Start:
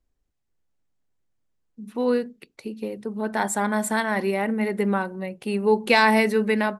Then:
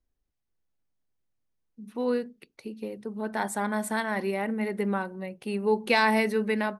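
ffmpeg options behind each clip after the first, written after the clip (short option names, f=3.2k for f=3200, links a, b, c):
-af "bandreject=f=7.4k:w=9.6,volume=-5dB"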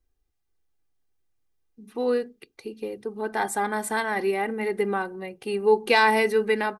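-af "aecho=1:1:2.5:0.53,volume=2.5dB"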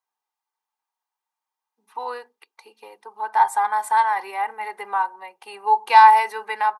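-af "highpass=f=930:t=q:w=9.5,volume=-3dB"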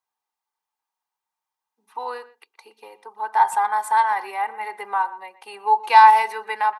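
-filter_complex "[0:a]asplit=2[a][b];[b]adelay=120,highpass=300,lowpass=3.4k,asoftclip=type=hard:threshold=-11dB,volume=-17dB[c];[a][c]amix=inputs=2:normalize=0"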